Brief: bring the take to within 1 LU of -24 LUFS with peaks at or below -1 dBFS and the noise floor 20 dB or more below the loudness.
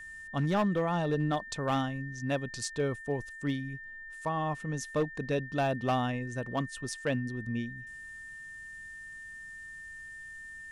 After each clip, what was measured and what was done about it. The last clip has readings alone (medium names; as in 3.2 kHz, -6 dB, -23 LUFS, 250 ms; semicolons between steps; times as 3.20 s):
clipped samples 0.6%; clipping level -22.5 dBFS; steady tone 1.8 kHz; tone level -43 dBFS; loudness -34.0 LUFS; peak level -22.5 dBFS; loudness target -24.0 LUFS
-> clip repair -22.5 dBFS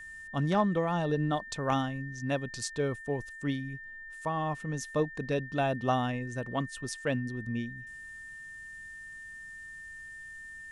clipped samples 0.0%; steady tone 1.8 kHz; tone level -43 dBFS
-> band-stop 1.8 kHz, Q 30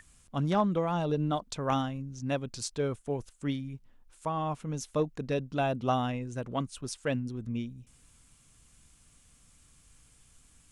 steady tone not found; loudness -32.5 LUFS; peak level -14.0 dBFS; loudness target -24.0 LUFS
-> trim +8.5 dB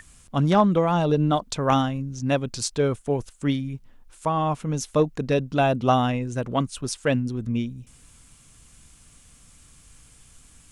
loudness -24.0 LUFS; peak level -5.5 dBFS; noise floor -54 dBFS